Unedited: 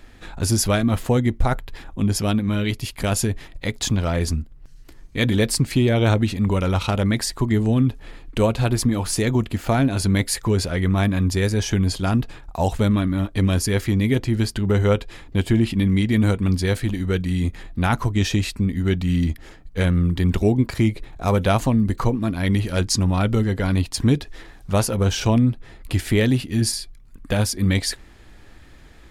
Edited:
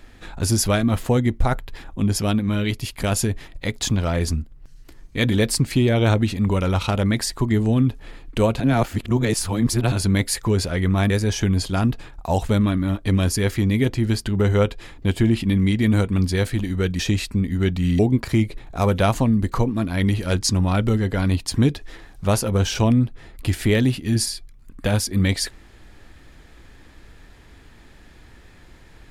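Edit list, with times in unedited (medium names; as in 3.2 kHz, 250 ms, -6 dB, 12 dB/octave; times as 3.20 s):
8.60–9.92 s: reverse
11.10–11.40 s: delete
17.29–18.24 s: delete
19.24–20.45 s: delete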